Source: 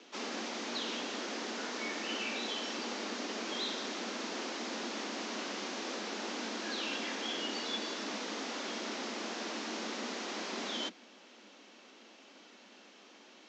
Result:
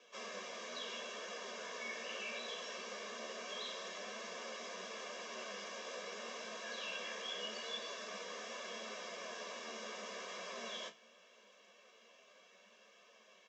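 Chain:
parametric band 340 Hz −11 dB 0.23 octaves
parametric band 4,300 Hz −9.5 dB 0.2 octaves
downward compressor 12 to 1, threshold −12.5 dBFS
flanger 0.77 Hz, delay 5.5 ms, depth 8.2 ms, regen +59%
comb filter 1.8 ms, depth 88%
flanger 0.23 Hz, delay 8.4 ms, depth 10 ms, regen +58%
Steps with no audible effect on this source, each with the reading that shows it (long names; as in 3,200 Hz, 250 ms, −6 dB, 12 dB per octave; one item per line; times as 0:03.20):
downward compressor, threshold −12.5 dBFS: peak of its input −25.5 dBFS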